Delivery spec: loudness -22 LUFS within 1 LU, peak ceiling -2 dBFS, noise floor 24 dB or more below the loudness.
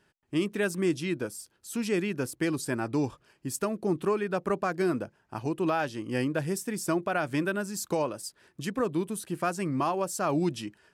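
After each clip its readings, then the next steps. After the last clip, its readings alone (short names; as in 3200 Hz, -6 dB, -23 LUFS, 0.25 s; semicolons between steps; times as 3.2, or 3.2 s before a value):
loudness -30.5 LUFS; peak -17.5 dBFS; loudness target -22.0 LUFS
-> gain +8.5 dB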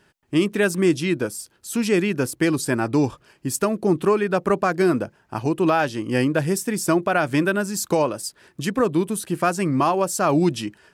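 loudness -22.0 LUFS; peak -9.0 dBFS; noise floor -62 dBFS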